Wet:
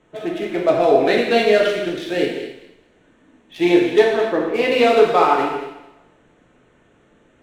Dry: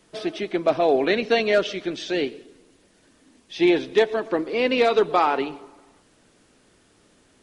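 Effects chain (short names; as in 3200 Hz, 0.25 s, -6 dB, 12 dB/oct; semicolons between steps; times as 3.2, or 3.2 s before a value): Wiener smoothing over 9 samples; thinning echo 0.215 s, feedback 21%, high-pass 1100 Hz, level -12 dB; non-linear reverb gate 0.33 s falling, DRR -2 dB; gain +1 dB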